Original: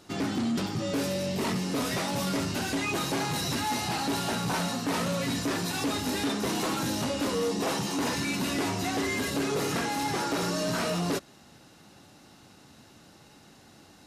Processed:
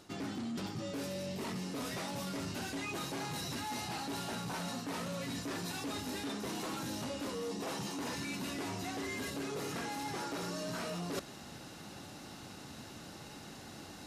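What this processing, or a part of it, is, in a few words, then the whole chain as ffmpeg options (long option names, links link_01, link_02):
compression on the reversed sound: -af "areverse,acompressor=threshold=-42dB:ratio=12,areverse,volume=5dB"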